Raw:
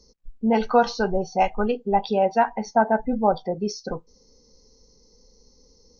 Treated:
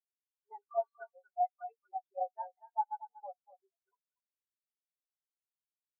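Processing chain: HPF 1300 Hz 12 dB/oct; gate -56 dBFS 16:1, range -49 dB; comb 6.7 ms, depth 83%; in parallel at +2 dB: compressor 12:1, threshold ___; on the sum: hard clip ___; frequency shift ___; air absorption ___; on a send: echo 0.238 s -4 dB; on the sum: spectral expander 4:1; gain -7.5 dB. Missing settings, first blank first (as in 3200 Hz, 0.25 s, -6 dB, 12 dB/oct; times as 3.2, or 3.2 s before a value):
-36 dBFS, -19.5 dBFS, -33 Hz, 270 m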